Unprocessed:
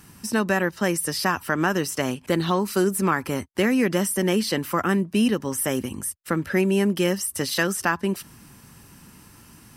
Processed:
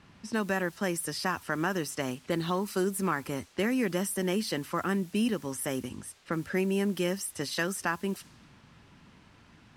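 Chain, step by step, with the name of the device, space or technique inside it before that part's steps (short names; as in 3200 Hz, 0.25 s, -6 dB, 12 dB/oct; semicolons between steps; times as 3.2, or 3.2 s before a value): cassette deck with a dynamic noise filter (white noise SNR 24 dB; low-pass opened by the level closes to 2600 Hz, open at -20.5 dBFS); gain -7.5 dB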